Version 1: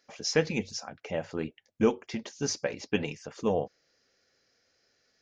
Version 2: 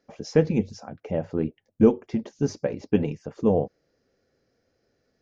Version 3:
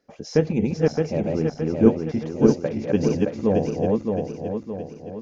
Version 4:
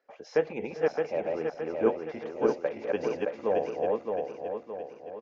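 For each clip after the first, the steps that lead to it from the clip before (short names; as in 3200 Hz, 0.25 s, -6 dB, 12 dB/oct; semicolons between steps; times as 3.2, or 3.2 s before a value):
tilt shelf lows +10 dB
regenerating reverse delay 0.309 s, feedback 68%, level -1 dB
three-band isolator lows -24 dB, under 450 Hz, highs -17 dB, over 3100 Hz; echo 0.398 s -20 dB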